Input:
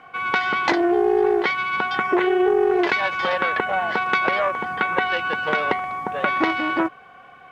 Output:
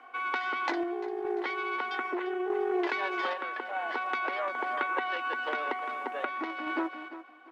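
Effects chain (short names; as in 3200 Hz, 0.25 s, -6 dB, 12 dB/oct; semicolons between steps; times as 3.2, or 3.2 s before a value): on a send: feedback echo 0.345 s, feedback 30%, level -12 dB; on the sum: compressor 2.5:1, threshold -23 dBFS, peak gain reduction 6.5 dB; rippled Chebyshev high-pass 240 Hz, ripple 3 dB; random-step tremolo 2.4 Hz; gain -4 dB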